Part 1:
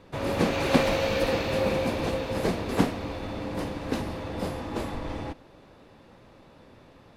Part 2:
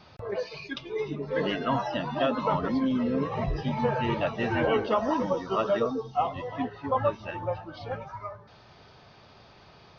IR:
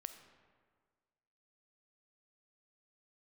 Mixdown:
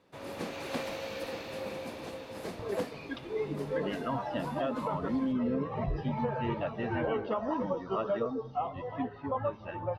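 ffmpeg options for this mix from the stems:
-filter_complex "[0:a]highshelf=f=6.6k:g=4,aeval=exprs='clip(val(0),-1,0.178)':c=same,highpass=f=200:p=1,volume=-12dB[a];[1:a]lowpass=f=1.7k:p=1,adelay=2400,volume=-3.5dB,asplit=2[b][c];[c]volume=-10.5dB[d];[2:a]atrim=start_sample=2205[e];[d][e]afir=irnorm=-1:irlink=0[f];[a][b][f]amix=inputs=3:normalize=0,alimiter=limit=-22.5dB:level=0:latency=1:release=313"

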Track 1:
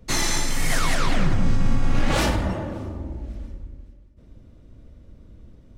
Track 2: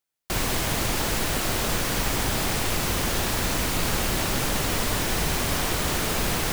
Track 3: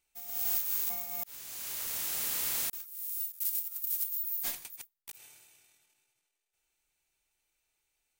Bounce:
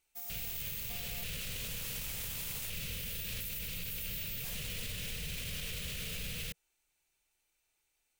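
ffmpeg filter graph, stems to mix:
-filter_complex "[1:a]firequalizer=gain_entry='entry(170,0);entry(320,-20);entry(470,-4);entry(820,-24);entry(1300,-13);entry(2600,5);entry(5300,-3);entry(15000,1)':delay=0.05:min_phase=1,volume=-8dB[a];[2:a]volume=0.5dB[b];[a][b]amix=inputs=2:normalize=0,alimiter=level_in=6.5dB:limit=-24dB:level=0:latency=1:release=40,volume=-6.5dB"

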